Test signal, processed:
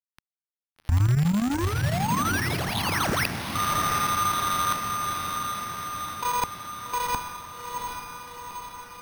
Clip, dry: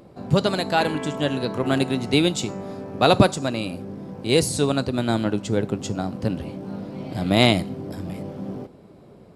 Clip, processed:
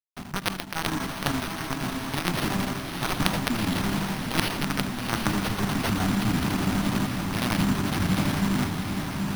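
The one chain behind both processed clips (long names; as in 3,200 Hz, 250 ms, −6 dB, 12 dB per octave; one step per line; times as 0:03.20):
high-pass filter 210 Hz 6 dB per octave
log-companded quantiser 2 bits
high-shelf EQ 5,400 Hz +7 dB
reversed playback
downward compressor 6 to 1, threshold −32 dBFS
reversed playback
square-wave tremolo 12 Hz, depth 65%, duty 80%
low-shelf EQ 300 Hz +6.5 dB
phaser with its sweep stopped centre 1,200 Hz, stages 4
on a send: feedback delay with all-pass diffusion 783 ms, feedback 63%, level −5 dB
on the sum: bad sample-rate conversion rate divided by 6×, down none, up hold
level +8 dB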